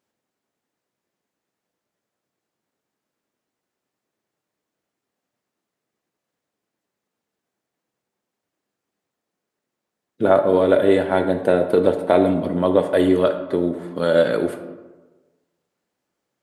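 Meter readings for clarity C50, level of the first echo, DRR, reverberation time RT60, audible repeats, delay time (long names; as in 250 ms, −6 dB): 8.5 dB, no echo audible, 6.5 dB, 1.2 s, no echo audible, no echo audible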